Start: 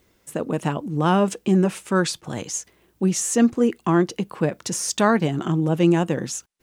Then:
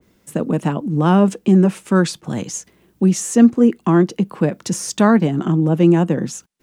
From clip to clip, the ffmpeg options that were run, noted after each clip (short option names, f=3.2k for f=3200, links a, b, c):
-filter_complex "[0:a]equalizer=f=190:w=1:g=9,acrossover=split=200[a][b];[a]alimiter=limit=-20dB:level=0:latency=1:release=449[c];[c][b]amix=inputs=2:normalize=0,adynamicequalizer=threshold=0.0141:dfrequency=2100:dqfactor=0.7:tfrequency=2100:tqfactor=0.7:attack=5:release=100:ratio=0.375:range=2.5:mode=cutabove:tftype=highshelf,volume=1.5dB"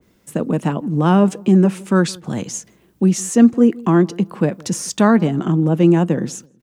-filter_complex "[0:a]asplit=2[a][b];[b]adelay=164,lowpass=f=990:p=1,volume=-23dB,asplit=2[c][d];[d]adelay=164,lowpass=f=990:p=1,volume=0.36[e];[a][c][e]amix=inputs=3:normalize=0"